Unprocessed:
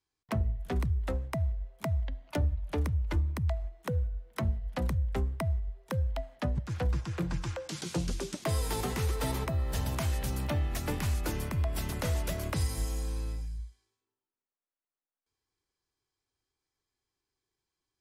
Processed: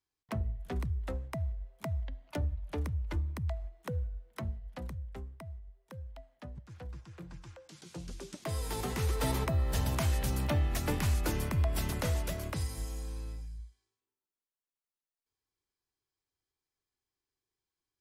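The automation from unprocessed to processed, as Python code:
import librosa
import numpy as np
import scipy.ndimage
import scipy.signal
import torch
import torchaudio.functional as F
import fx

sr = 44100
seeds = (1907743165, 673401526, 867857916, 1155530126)

y = fx.gain(x, sr, db=fx.line((4.12, -4.5), (5.44, -14.5), (7.78, -14.5), (8.36, -7.0), (9.28, 1.0), (11.86, 1.0), (12.73, -5.5)))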